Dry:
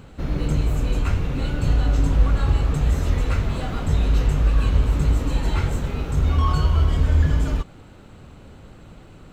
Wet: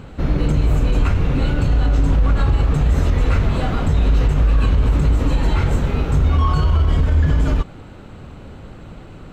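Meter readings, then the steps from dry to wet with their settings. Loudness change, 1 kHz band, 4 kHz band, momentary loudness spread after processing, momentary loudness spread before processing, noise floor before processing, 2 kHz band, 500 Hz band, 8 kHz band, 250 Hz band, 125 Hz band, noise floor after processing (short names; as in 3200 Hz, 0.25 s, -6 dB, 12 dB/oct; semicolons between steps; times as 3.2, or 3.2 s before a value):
+4.0 dB, +4.5 dB, +2.5 dB, 3 LU, 6 LU, -45 dBFS, +4.0 dB, +5.0 dB, -0.5 dB, +5.0 dB, +4.0 dB, -38 dBFS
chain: high shelf 5200 Hz -8.5 dB; limiter -15 dBFS, peak gain reduction 8.5 dB; gain +7 dB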